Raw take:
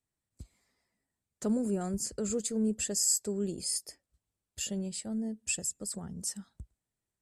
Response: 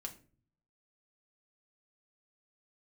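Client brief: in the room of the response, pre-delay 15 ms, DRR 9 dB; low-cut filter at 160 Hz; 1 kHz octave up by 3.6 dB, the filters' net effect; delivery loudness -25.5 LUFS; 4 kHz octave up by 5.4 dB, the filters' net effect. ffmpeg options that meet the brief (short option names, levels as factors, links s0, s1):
-filter_complex "[0:a]highpass=160,equalizer=f=1000:t=o:g=5.5,equalizer=f=4000:t=o:g=7.5,asplit=2[s0][s1];[1:a]atrim=start_sample=2205,adelay=15[s2];[s1][s2]afir=irnorm=-1:irlink=0,volume=0.501[s3];[s0][s3]amix=inputs=2:normalize=0,volume=1.78"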